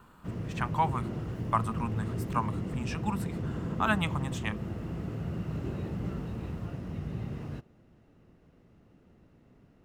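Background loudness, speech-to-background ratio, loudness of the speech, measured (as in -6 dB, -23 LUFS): -36.0 LUFS, 2.5 dB, -33.5 LUFS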